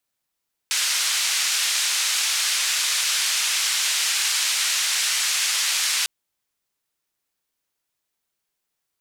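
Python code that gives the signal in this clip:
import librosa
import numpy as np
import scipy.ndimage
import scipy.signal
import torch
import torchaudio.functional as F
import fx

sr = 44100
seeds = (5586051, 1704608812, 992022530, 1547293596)

y = fx.band_noise(sr, seeds[0], length_s=5.35, low_hz=1800.0, high_hz=7400.0, level_db=-22.5)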